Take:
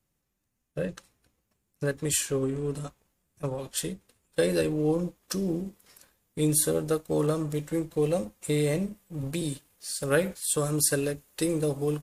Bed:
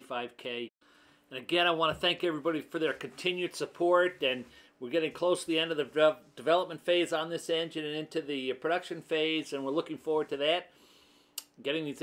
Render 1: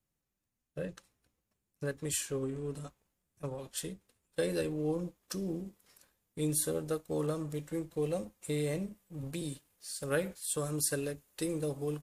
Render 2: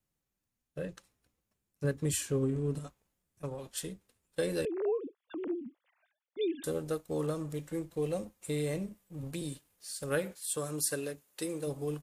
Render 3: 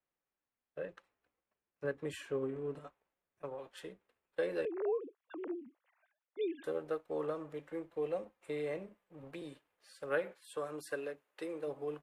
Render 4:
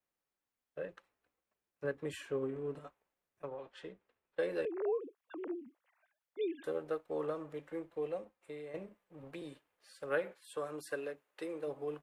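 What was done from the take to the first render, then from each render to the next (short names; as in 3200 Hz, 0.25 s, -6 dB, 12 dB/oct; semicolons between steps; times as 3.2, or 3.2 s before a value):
gain -7.5 dB
1.84–2.79 bell 140 Hz +8 dB 2.9 oct; 4.65–6.64 sine-wave speech; 10.18–11.66 HPF 140 Hz -> 290 Hz 6 dB/oct
three-band isolator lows -17 dB, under 360 Hz, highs -23 dB, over 2800 Hz
3.45–4.39 air absorption 100 m; 7.84–8.74 fade out, to -11 dB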